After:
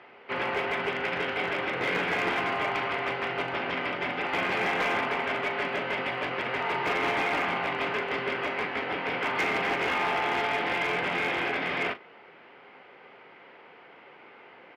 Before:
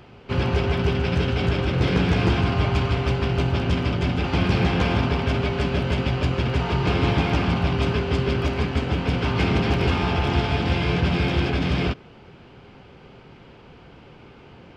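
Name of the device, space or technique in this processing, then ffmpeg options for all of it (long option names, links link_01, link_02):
megaphone: -filter_complex "[0:a]highpass=520,lowpass=2500,equalizer=frequency=2000:width_type=o:width=0.32:gain=9,asoftclip=type=hard:threshold=-21.5dB,asplit=2[link_01][link_02];[link_02]adelay=39,volume=-12dB[link_03];[link_01][link_03]amix=inputs=2:normalize=0"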